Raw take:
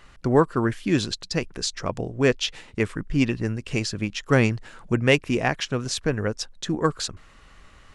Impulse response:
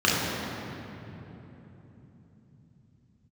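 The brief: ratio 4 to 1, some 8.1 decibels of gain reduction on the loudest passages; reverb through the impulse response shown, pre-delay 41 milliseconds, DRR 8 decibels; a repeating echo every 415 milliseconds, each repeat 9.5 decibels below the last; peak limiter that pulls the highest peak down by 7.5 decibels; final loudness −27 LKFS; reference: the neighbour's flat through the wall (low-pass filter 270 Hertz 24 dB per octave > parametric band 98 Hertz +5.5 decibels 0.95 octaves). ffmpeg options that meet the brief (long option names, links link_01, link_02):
-filter_complex "[0:a]acompressor=threshold=-22dB:ratio=4,alimiter=limit=-18dB:level=0:latency=1,aecho=1:1:415|830|1245|1660:0.335|0.111|0.0365|0.012,asplit=2[link_01][link_02];[1:a]atrim=start_sample=2205,adelay=41[link_03];[link_02][link_03]afir=irnorm=-1:irlink=0,volume=-26.5dB[link_04];[link_01][link_04]amix=inputs=2:normalize=0,lowpass=frequency=270:width=0.5412,lowpass=frequency=270:width=1.3066,equalizer=frequency=98:width_type=o:width=0.95:gain=5.5,volume=2.5dB"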